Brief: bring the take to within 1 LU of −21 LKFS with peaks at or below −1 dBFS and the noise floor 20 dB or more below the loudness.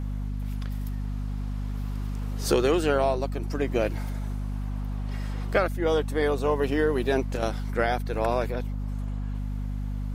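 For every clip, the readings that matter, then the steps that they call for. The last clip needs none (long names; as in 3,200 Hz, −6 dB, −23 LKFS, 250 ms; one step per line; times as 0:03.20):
mains hum 50 Hz; hum harmonics up to 250 Hz; level of the hum −28 dBFS; integrated loudness −28.0 LKFS; sample peak −9.5 dBFS; target loudness −21.0 LKFS
→ mains-hum notches 50/100/150/200/250 Hz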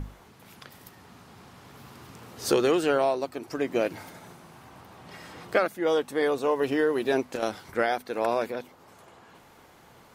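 mains hum none found; integrated loudness −27.0 LKFS; sample peak −9.0 dBFS; target loudness −21.0 LKFS
→ level +6 dB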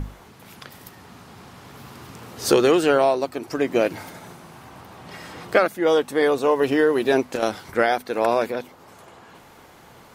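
integrated loudness −21.0 LKFS; sample peak −3.0 dBFS; background noise floor −48 dBFS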